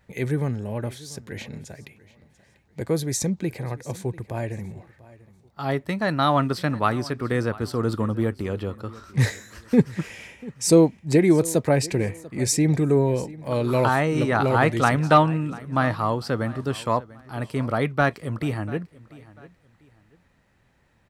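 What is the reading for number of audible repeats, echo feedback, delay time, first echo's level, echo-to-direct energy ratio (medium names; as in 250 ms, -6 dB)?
2, 29%, 692 ms, -20.0 dB, -19.5 dB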